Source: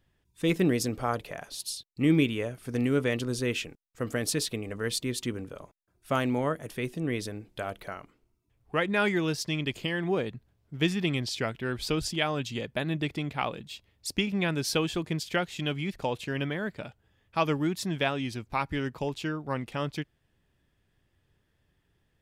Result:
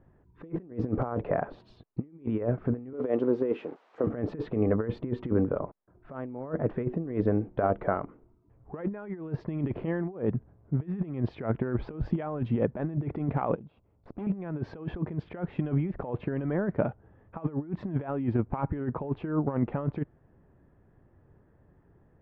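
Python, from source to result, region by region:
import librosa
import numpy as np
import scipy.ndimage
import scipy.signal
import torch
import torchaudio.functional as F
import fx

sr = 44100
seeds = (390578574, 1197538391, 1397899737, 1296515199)

y = fx.chain(x, sr, fx.crossing_spikes(level_db=-27.0),
    fx.highpass(hz=390.0, slope=12),
    fx.peak_eq(hz=1700.0, db=-9.5, octaves=1.9), at=(2.93, 4.07))
y = fx.chain(y, sr, fx.peak_eq(hz=1800.0, db=-15.0, octaves=0.2),
    fx.level_steps(step_db=19),
    fx.tube_stage(drive_db=45.0, bias=0.35), at=(13.55, 14.27))
y = scipy.signal.sosfilt(scipy.signal.bessel(4, 890.0, 'lowpass', norm='mag', fs=sr, output='sos'), y)
y = fx.low_shelf(y, sr, hz=100.0, db=-7.0)
y = fx.over_compress(y, sr, threshold_db=-37.0, ratio=-0.5)
y = y * 10.0 ** (8.5 / 20.0)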